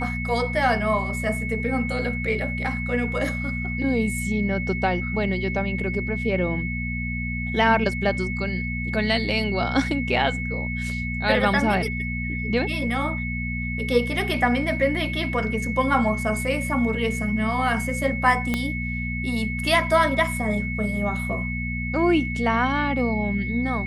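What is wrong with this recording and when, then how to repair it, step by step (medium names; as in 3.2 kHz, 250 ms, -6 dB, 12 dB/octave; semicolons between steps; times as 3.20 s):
hum 60 Hz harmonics 4 -29 dBFS
whine 2.2 kHz -30 dBFS
18.54 s: pop -10 dBFS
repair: de-click; band-stop 2.2 kHz, Q 30; de-hum 60 Hz, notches 4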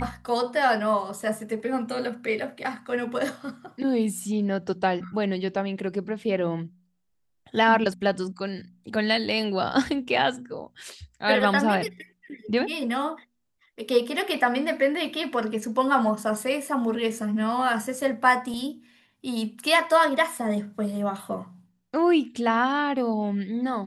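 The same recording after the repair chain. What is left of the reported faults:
18.54 s: pop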